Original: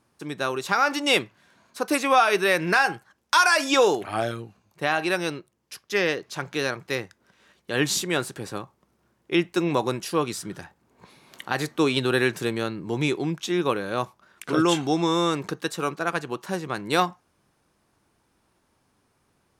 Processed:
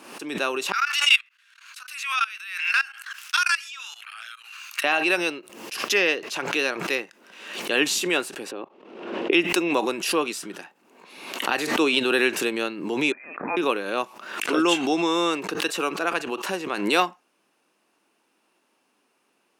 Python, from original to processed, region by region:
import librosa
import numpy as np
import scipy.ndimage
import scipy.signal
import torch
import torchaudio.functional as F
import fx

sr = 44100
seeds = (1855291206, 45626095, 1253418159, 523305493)

y = fx.chain(x, sr, fx.cheby1_highpass(hz=1300.0, order=4),
    fx.level_steps(step_db=21), at=(0.72, 4.84))
y = fx.chain(y, sr, fx.peak_eq(hz=420.0, db=14.0, octaves=2.2),
    fx.level_steps(step_db=17),
    fx.lowpass_res(hz=3300.0, q=1.7), at=(8.51, 9.33))
y = fx.chain(y, sr, fx.highpass(hz=1500.0, slope=12),
    fx.freq_invert(carrier_hz=2800), at=(13.12, 13.57))
y = scipy.signal.sosfilt(scipy.signal.butter(4, 240.0, 'highpass', fs=sr, output='sos'), y)
y = fx.peak_eq(y, sr, hz=2700.0, db=10.0, octaves=0.29)
y = fx.pre_swell(y, sr, db_per_s=62.0)